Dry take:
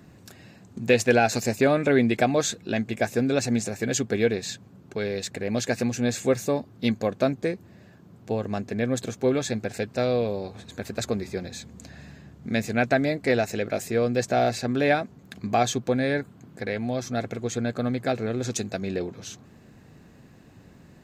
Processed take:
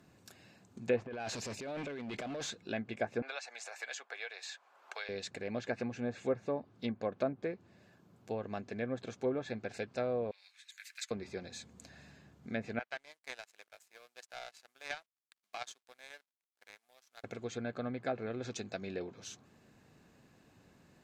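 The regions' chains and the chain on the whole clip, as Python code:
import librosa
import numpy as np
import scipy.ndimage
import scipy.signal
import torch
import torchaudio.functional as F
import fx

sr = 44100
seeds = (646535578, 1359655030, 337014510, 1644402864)

y = fx.chain(x, sr, fx.peak_eq(hz=1200.0, db=-8.0, octaves=0.29),
    fx.over_compress(threshold_db=-27.0, ratio=-1.0),
    fx.clip_hard(threshold_db=-26.0), at=(0.97, 2.5))
y = fx.chain(y, sr, fx.highpass(hz=750.0, slope=24),
    fx.high_shelf(hz=4900.0, db=-10.5),
    fx.band_squash(depth_pct=100), at=(3.22, 5.09))
y = fx.chain(y, sr, fx.block_float(bits=7),
    fx.ladder_highpass(hz=1700.0, resonance_pct=55),
    fx.high_shelf(hz=2300.0, db=10.0), at=(10.31, 11.11))
y = fx.chain(y, sr, fx.delta_hold(step_db=-38.5),
    fx.highpass(hz=900.0, slope=12),
    fx.power_curve(exponent=2.0), at=(12.79, 17.24))
y = fx.notch(y, sr, hz=1900.0, q=19.0)
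y = fx.env_lowpass_down(y, sr, base_hz=1200.0, full_db=-19.5)
y = fx.low_shelf(y, sr, hz=340.0, db=-8.0)
y = y * librosa.db_to_amplitude(-7.5)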